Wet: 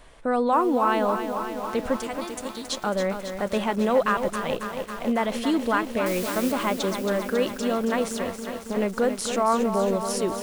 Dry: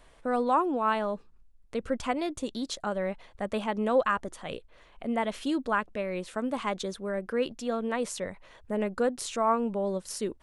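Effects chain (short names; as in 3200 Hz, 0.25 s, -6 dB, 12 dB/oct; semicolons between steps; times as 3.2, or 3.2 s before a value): 1.96–2.69 pre-emphasis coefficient 0.8; in parallel at +1 dB: limiter -24 dBFS, peak gain reduction 10 dB; 6.06–6.52 on the sum: requantised 6-bit, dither triangular; 8.08–8.77 tube stage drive 23 dB, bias 0.75; lo-fi delay 0.274 s, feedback 80%, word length 7-bit, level -8 dB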